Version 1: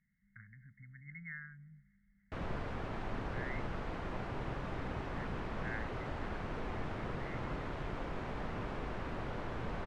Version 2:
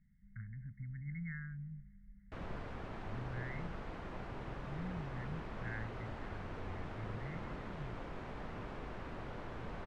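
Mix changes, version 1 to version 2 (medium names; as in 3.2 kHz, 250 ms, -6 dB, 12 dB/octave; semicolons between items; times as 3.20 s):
speech: add tilt EQ -3.5 dB/octave; background -5.0 dB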